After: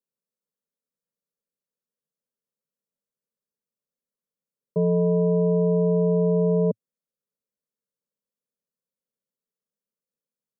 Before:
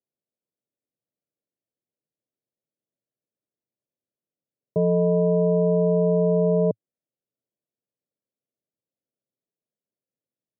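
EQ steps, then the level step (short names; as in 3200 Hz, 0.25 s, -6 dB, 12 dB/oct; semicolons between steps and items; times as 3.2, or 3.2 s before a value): dynamic EQ 240 Hz, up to +3 dB, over -39 dBFS, Q 2.2; fixed phaser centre 480 Hz, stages 8; 0.0 dB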